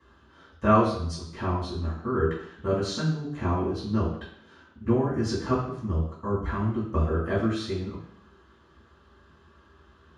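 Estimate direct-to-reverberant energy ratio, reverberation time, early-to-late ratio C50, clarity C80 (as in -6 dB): -10.0 dB, 0.70 s, 5.0 dB, 8.0 dB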